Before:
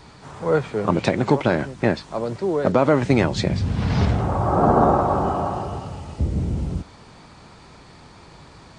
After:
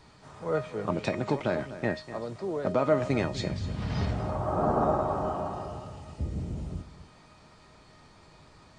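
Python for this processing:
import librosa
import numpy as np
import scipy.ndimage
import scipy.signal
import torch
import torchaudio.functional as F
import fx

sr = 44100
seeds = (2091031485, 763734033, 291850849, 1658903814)

y = fx.comb_fb(x, sr, f0_hz=620.0, decay_s=0.33, harmonics='all', damping=0.0, mix_pct=80)
y = y + 10.0 ** (-14.0 / 20.0) * np.pad(y, (int(247 * sr / 1000.0), 0))[:len(y)]
y = y * 10.0 ** (3.0 / 20.0)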